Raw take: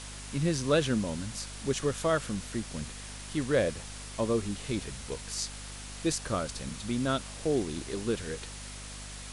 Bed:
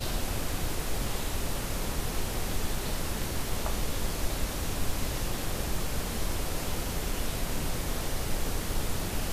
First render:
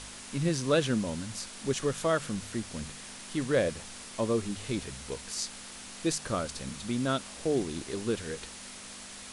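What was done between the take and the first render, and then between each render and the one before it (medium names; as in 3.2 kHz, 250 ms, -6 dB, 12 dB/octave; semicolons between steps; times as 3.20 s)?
de-hum 50 Hz, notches 3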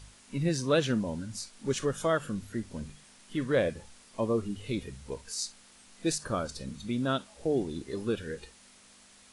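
noise print and reduce 12 dB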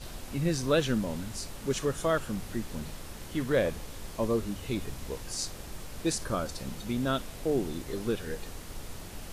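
add bed -11 dB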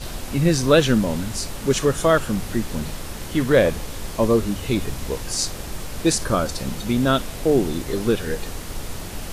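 trim +10.5 dB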